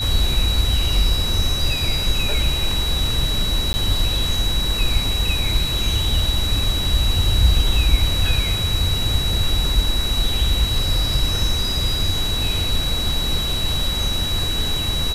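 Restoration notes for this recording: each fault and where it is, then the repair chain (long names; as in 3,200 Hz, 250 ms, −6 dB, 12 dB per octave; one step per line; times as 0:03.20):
whistle 3,900 Hz −23 dBFS
0:03.73–0:03.74: drop-out 10 ms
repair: notch filter 3,900 Hz, Q 30
repair the gap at 0:03.73, 10 ms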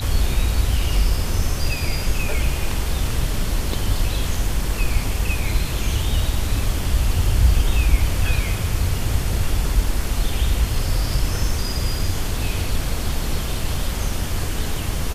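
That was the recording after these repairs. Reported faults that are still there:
none of them is left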